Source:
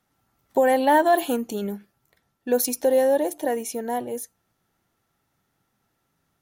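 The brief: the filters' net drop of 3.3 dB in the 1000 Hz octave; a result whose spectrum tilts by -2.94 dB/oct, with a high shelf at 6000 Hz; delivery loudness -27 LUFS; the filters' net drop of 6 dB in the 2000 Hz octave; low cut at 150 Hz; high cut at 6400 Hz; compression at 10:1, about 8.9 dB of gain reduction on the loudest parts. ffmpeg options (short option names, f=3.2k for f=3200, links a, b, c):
-af "highpass=150,lowpass=6.4k,equalizer=f=1k:t=o:g=-3.5,equalizer=f=2k:t=o:g=-5.5,highshelf=f=6k:g=-7,acompressor=threshold=-25dB:ratio=10,volume=4.5dB"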